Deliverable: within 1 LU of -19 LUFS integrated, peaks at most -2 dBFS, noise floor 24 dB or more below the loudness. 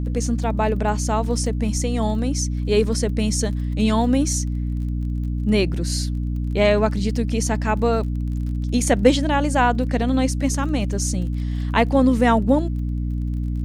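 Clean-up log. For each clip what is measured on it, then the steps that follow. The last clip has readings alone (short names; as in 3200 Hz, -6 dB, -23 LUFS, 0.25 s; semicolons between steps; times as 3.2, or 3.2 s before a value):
ticks 28/s; hum 60 Hz; harmonics up to 300 Hz; hum level -21 dBFS; loudness -21.5 LUFS; peak -2.5 dBFS; loudness target -19.0 LUFS
-> de-click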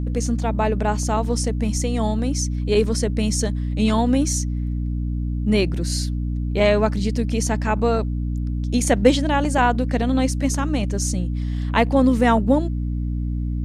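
ticks 0/s; hum 60 Hz; harmonics up to 300 Hz; hum level -21 dBFS
-> notches 60/120/180/240/300 Hz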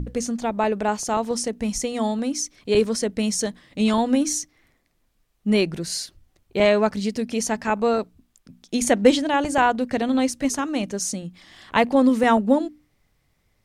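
hum none; loudness -22.5 LUFS; peak -3.5 dBFS; loudness target -19.0 LUFS
-> gain +3.5 dB; limiter -2 dBFS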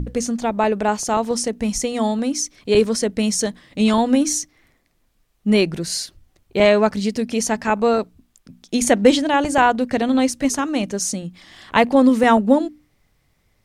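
loudness -19.0 LUFS; peak -2.0 dBFS; noise floor -64 dBFS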